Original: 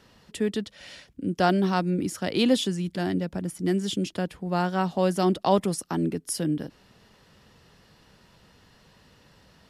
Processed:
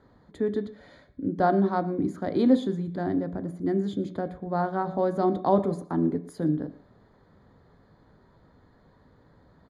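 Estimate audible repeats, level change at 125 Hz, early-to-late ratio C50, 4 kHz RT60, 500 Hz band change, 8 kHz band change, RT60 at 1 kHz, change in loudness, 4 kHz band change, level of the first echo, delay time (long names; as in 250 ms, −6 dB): 1, −2.5 dB, 14.0 dB, 0.55 s, +0.5 dB, below −20 dB, 0.60 s, −0.5 dB, −15.5 dB, −21.0 dB, 116 ms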